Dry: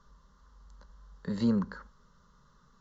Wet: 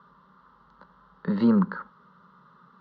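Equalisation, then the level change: distance through air 75 m; cabinet simulation 180–3800 Hz, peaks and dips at 180 Hz +7 dB, 330 Hz +5 dB, 890 Hz +5 dB, 1.3 kHz +8 dB; +6.0 dB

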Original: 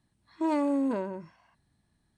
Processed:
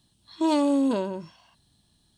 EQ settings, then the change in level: resonant high shelf 2.6 kHz +7 dB, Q 3; +5.0 dB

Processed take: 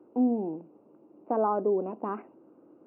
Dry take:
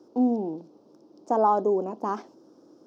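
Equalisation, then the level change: band-stop 1.7 kHz, Q 11; dynamic bell 880 Hz, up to -6 dB, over -37 dBFS, Q 2.3; brick-wall FIR low-pass 2.9 kHz; -2.0 dB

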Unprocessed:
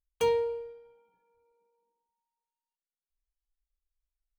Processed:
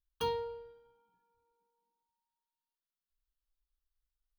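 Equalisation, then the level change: static phaser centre 2.2 kHz, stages 6; 0.0 dB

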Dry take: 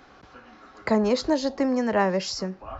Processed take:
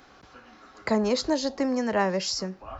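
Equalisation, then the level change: treble shelf 4.3 kHz +8 dB; -2.5 dB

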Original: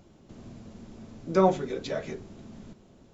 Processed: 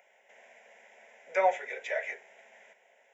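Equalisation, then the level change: high-pass 480 Hz 24 dB/octave; peaking EQ 2 kHz +13.5 dB 0.7 oct; static phaser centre 1.2 kHz, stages 6; 0.0 dB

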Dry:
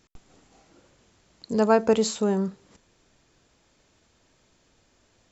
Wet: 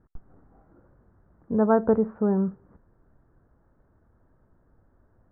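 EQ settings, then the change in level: steep low-pass 1.6 kHz 48 dB/octave; bass shelf 160 Hz +11.5 dB; -2.5 dB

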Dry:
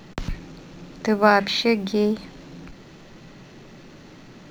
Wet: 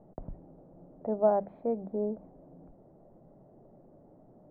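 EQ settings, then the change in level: four-pole ladder low-pass 750 Hz, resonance 60%; distance through air 170 m; -3.0 dB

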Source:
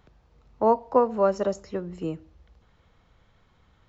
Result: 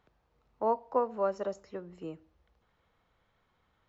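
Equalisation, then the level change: bass shelf 180 Hz -5.5 dB; bass shelf 380 Hz -5 dB; treble shelf 3.7 kHz -7.5 dB; -6.0 dB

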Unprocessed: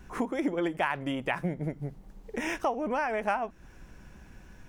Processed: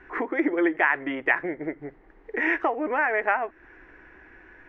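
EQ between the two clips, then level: resonant low-pass 1.9 kHz, resonance Q 4.3; resonant low shelf 250 Hz -9 dB, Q 3; band-stop 560 Hz, Q 12; +1.0 dB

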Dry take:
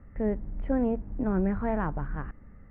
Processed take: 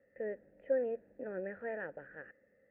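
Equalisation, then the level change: bass shelf 77 Hz -11.5 dB; dynamic bell 1.5 kHz, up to +7 dB, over -57 dBFS, Q 1.9; vowel filter e; +2.5 dB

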